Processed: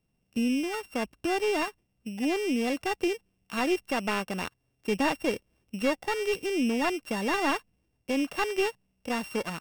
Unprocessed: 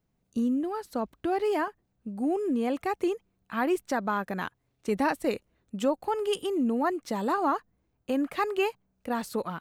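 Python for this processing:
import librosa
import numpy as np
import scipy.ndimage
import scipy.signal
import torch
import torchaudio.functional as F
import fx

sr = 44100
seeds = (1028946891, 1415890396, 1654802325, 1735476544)

y = np.r_[np.sort(x[:len(x) // 16 * 16].reshape(-1, 16), axis=1).ravel(), x[len(x) // 16 * 16:]]
y = fx.slew_limit(y, sr, full_power_hz=170.0)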